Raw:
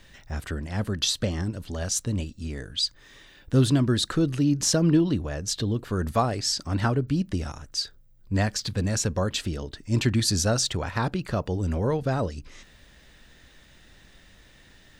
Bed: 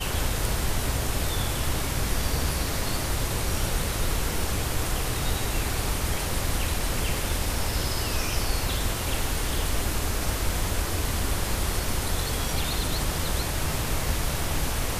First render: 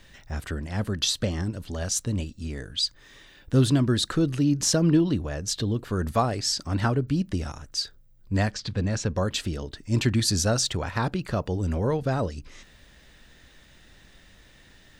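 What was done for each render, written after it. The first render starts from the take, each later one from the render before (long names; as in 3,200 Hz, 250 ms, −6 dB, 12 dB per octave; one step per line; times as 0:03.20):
0:08.51–0:09.16: high-frequency loss of the air 100 metres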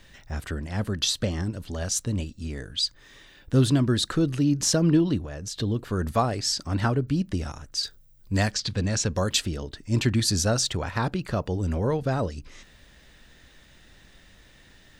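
0:05.18–0:05.59: downward compressor 5 to 1, threshold −31 dBFS
0:07.83–0:09.40: high-shelf EQ 3,300 Hz +9.5 dB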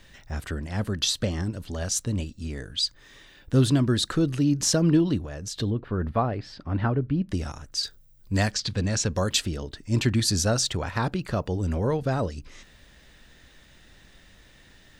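0:05.70–0:07.29: high-frequency loss of the air 400 metres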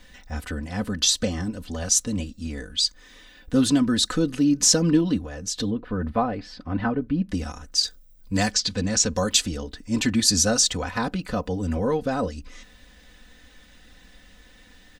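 dynamic equaliser 6,600 Hz, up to +6 dB, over −41 dBFS, Q 1.2
comb filter 4 ms, depth 74%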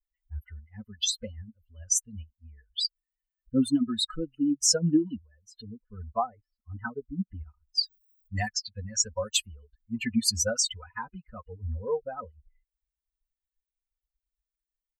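spectral dynamics exaggerated over time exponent 3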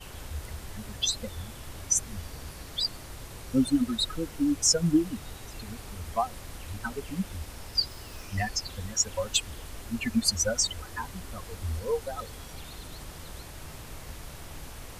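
mix in bed −15.5 dB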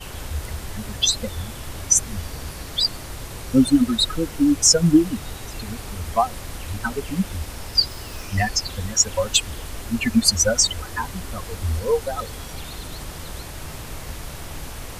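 level +8.5 dB
brickwall limiter −2 dBFS, peak gain reduction 1 dB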